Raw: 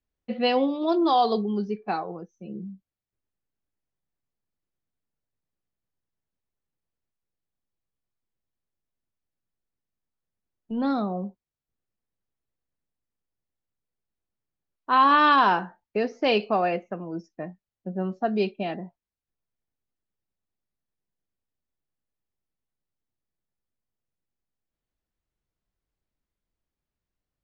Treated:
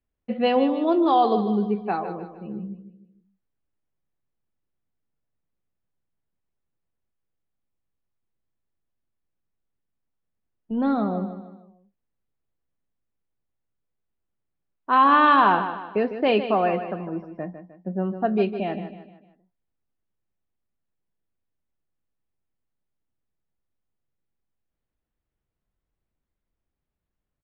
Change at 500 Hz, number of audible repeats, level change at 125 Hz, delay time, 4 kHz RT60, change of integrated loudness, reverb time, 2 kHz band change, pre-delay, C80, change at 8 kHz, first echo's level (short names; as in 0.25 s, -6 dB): +2.5 dB, 4, +3.5 dB, 0.153 s, none, +2.0 dB, none, +1.0 dB, none, none, n/a, -10.5 dB